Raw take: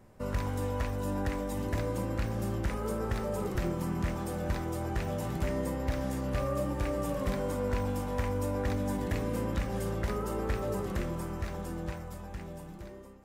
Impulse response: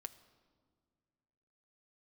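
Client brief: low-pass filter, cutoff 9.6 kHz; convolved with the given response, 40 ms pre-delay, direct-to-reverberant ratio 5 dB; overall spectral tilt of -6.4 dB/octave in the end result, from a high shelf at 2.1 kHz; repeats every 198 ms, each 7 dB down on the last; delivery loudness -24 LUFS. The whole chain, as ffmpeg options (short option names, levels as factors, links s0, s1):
-filter_complex "[0:a]lowpass=9600,highshelf=f=2100:g=-4.5,aecho=1:1:198|396|594|792|990:0.447|0.201|0.0905|0.0407|0.0183,asplit=2[s0][s1];[1:a]atrim=start_sample=2205,adelay=40[s2];[s1][s2]afir=irnorm=-1:irlink=0,volume=0.944[s3];[s0][s3]amix=inputs=2:normalize=0,volume=2.51"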